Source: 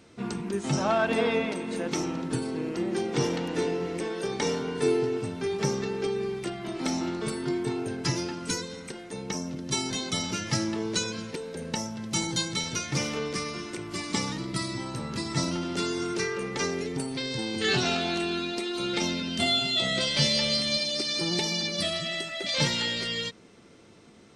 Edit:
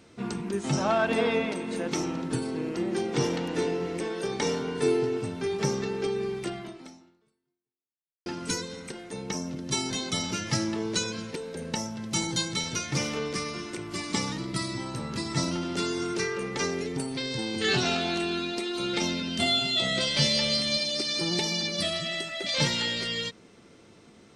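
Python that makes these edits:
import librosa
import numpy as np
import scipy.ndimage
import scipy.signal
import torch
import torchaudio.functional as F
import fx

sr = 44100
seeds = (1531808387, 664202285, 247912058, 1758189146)

y = fx.edit(x, sr, fx.fade_out_span(start_s=6.58, length_s=1.68, curve='exp'), tone=tone)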